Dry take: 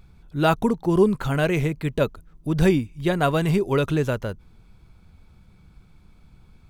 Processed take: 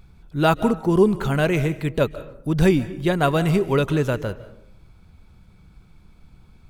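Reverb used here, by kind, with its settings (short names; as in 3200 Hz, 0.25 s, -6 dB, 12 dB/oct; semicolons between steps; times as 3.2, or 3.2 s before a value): digital reverb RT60 0.71 s, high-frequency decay 0.5×, pre-delay 0.115 s, DRR 15 dB; gain +1.5 dB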